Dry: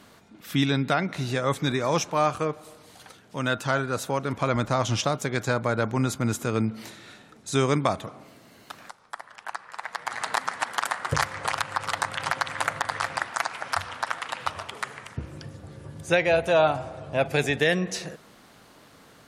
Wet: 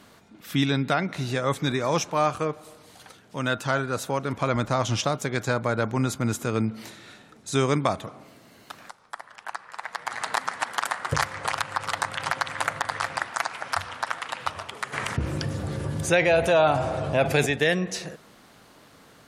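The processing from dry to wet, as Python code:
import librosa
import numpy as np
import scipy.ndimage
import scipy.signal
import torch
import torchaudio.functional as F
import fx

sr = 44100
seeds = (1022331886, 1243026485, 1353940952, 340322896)

y = fx.env_flatten(x, sr, amount_pct=50, at=(14.92, 17.45), fade=0.02)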